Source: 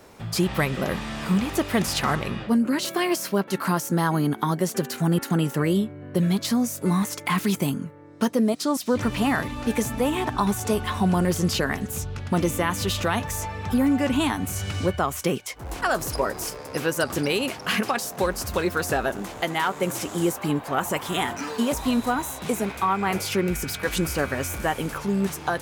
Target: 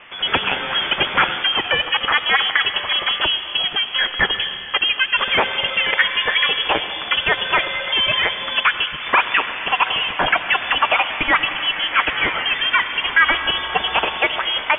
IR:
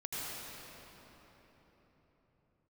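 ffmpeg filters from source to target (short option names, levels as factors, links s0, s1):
-filter_complex "[0:a]tiltshelf=f=670:g=-9,asetrate=76440,aresample=44100,asplit=2[s0][s1];[1:a]atrim=start_sample=2205[s2];[s1][s2]afir=irnorm=-1:irlink=0,volume=0.266[s3];[s0][s3]amix=inputs=2:normalize=0,aeval=exprs='0.794*sin(PI/2*1.58*val(0)/0.794)':c=same,lowpass=f=3100:t=q:w=0.5098,lowpass=f=3100:t=q:w=0.6013,lowpass=f=3100:t=q:w=0.9,lowpass=f=3100:t=q:w=2.563,afreqshift=-3600,volume=0.841"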